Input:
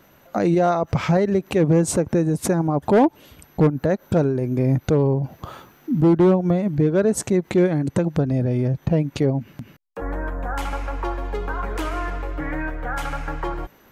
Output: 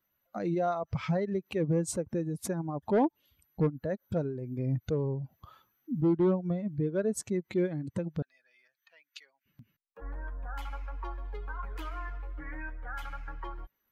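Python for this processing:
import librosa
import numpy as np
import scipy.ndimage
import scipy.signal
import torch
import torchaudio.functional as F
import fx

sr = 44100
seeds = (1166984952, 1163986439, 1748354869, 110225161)

y = fx.bin_expand(x, sr, power=1.5)
y = fx.cheby1_highpass(y, sr, hz=1500.0, order=3, at=(8.22, 9.46))
y = y * 10.0 ** (-9.0 / 20.0)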